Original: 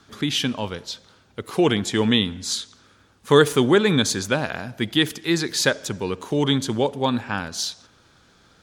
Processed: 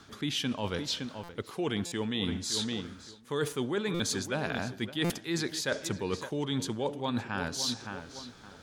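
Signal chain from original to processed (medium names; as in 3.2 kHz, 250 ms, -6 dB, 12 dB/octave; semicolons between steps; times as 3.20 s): filtered feedback delay 565 ms, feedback 24%, low-pass 2.9 kHz, level -15 dB; reverse; compression 10:1, threshold -30 dBFS, peak gain reduction 20.5 dB; reverse; buffer glitch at 1.23/1.86/3.94/5.04 s, samples 256, times 9; trim +1.5 dB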